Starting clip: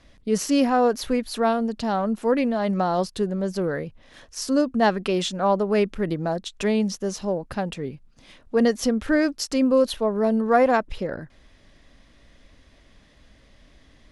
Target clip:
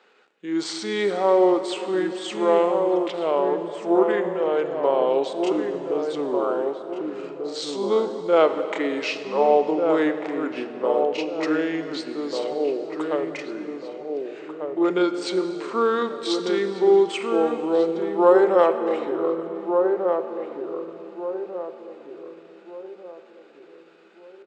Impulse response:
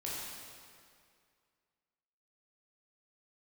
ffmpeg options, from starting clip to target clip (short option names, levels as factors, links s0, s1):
-filter_complex "[0:a]highpass=f=470:w=0.5412,highpass=f=470:w=1.3066,highshelf=f=4600:g=-7.5,asetrate=57191,aresample=44100,atempo=0.771105,asplit=2[s0][s1];[s1]adelay=862,lowpass=f=1600:p=1,volume=0.631,asplit=2[s2][s3];[s3]adelay=862,lowpass=f=1600:p=1,volume=0.4,asplit=2[s4][s5];[s5]adelay=862,lowpass=f=1600:p=1,volume=0.4,asplit=2[s6][s7];[s7]adelay=862,lowpass=f=1600:p=1,volume=0.4,asplit=2[s8][s9];[s9]adelay=862,lowpass=f=1600:p=1,volume=0.4[s10];[s0][s2][s4][s6][s8][s10]amix=inputs=6:normalize=0,asplit=2[s11][s12];[1:a]atrim=start_sample=2205[s13];[s12][s13]afir=irnorm=-1:irlink=0,volume=0.376[s14];[s11][s14]amix=inputs=2:normalize=0,asetrate=25442,aresample=44100,volume=1.19"